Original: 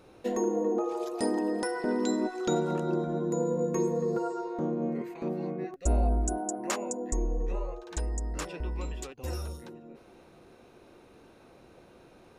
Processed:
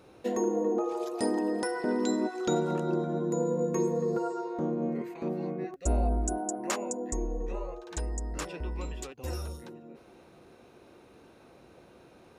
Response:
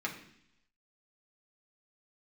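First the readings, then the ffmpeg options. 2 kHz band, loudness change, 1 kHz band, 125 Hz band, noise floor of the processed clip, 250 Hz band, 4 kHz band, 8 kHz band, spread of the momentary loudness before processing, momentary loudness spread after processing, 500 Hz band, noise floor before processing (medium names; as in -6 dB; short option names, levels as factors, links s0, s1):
0.0 dB, -0.5 dB, 0.0 dB, -1.0 dB, -56 dBFS, 0.0 dB, 0.0 dB, 0.0 dB, 9 LU, 10 LU, 0.0 dB, -56 dBFS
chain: -af "highpass=48"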